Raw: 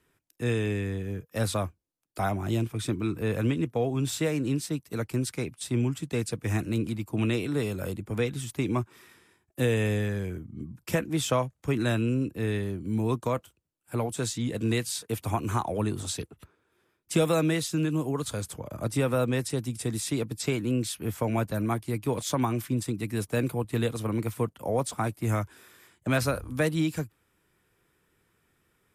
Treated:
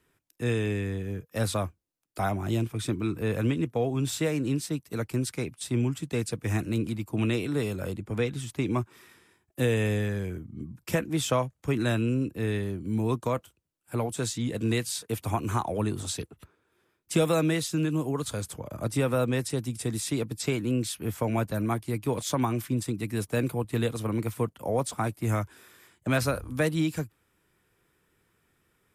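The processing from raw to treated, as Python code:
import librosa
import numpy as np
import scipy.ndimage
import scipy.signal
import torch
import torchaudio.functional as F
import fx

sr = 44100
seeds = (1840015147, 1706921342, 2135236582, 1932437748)

y = fx.high_shelf(x, sr, hz=11000.0, db=-9.0, at=(7.76, 8.71))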